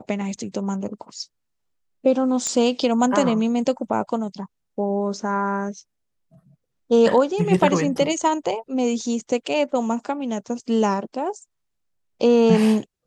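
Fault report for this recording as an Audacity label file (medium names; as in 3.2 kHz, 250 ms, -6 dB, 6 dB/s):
2.470000	2.470000	pop -13 dBFS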